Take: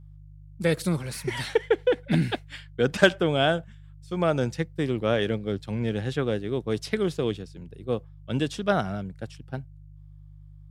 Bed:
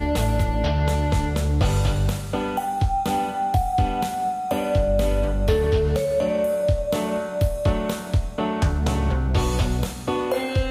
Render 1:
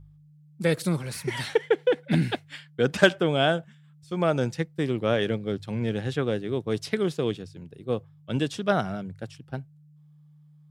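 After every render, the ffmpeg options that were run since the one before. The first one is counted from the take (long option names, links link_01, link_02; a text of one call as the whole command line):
ffmpeg -i in.wav -af "bandreject=frequency=50:width_type=h:width=4,bandreject=frequency=100:width_type=h:width=4" out.wav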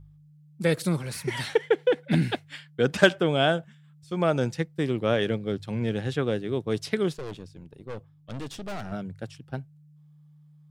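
ffmpeg -i in.wav -filter_complex "[0:a]asettb=1/sr,asplit=3[link_01][link_02][link_03];[link_01]atrim=end=7.134[link_04];[link_02]atrim=start=7.13:end=8.92,asetpts=PTS-STARTPTS,afade=type=in:duration=0.004:curve=qsin,afade=type=out:start_time=1.786:duration=0.004:curve=qsin,aeval=exprs='(tanh(44.7*val(0)+0.65)-tanh(0.65))/44.7':channel_layout=same[link_05];[link_03]atrim=start=8.916[link_06];[link_04][link_05]acrossfade=duration=0.004:curve1=hsin:curve2=qsin[link_07];[link_07][link_06]acrossfade=duration=0.004:curve1=qsin:curve2=hsin" out.wav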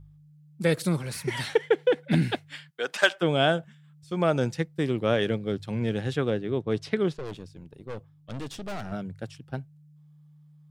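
ffmpeg -i in.wav -filter_complex "[0:a]asplit=3[link_01][link_02][link_03];[link_01]afade=type=out:start_time=2.69:duration=0.02[link_04];[link_02]highpass=700,afade=type=in:start_time=2.69:duration=0.02,afade=type=out:start_time=3.21:duration=0.02[link_05];[link_03]afade=type=in:start_time=3.21:duration=0.02[link_06];[link_04][link_05][link_06]amix=inputs=3:normalize=0,asettb=1/sr,asplit=3[link_07][link_08][link_09];[link_07]atrim=end=6.304[link_10];[link_08]atrim=start=6.3:end=7.25,asetpts=PTS-STARTPTS,afade=type=in:duration=0.004:curve=qsin,afade=type=out:start_time=0.946:duration=0.004:curve=qsin,aemphasis=mode=reproduction:type=50fm[link_11];[link_09]atrim=start=7.246[link_12];[link_10][link_11]acrossfade=duration=0.004:curve1=hsin:curve2=qsin[link_13];[link_13][link_12]acrossfade=duration=0.004:curve1=qsin:curve2=hsin" out.wav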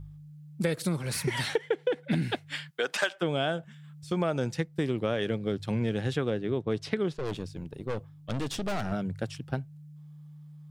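ffmpeg -i in.wav -filter_complex "[0:a]asplit=2[link_01][link_02];[link_02]alimiter=limit=-13.5dB:level=0:latency=1:release=438,volume=1dB[link_03];[link_01][link_03]amix=inputs=2:normalize=0,acompressor=threshold=-28dB:ratio=3" out.wav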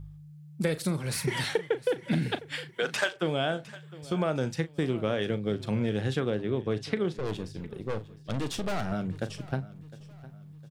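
ffmpeg -i in.wav -filter_complex "[0:a]asplit=2[link_01][link_02];[link_02]adelay=38,volume=-13dB[link_03];[link_01][link_03]amix=inputs=2:normalize=0,aecho=1:1:708|1416|2124:0.112|0.0426|0.0162" out.wav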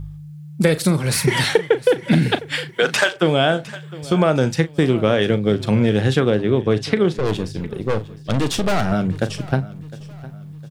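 ffmpeg -i in.wav -af "volume=12dB,alimiter=limit=-2dB:level=0:latency=1" out.wav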